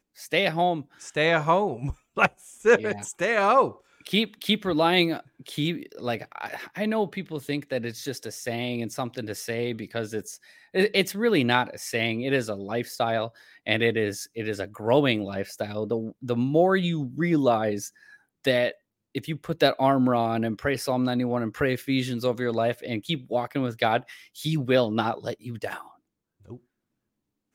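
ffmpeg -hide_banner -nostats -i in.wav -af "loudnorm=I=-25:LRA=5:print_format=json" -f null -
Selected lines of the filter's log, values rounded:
"input_i" : "-26.0",
"input_tp" : "-4.2",
"input_lra" : "6.9",
"input_thresh" : "-36.4",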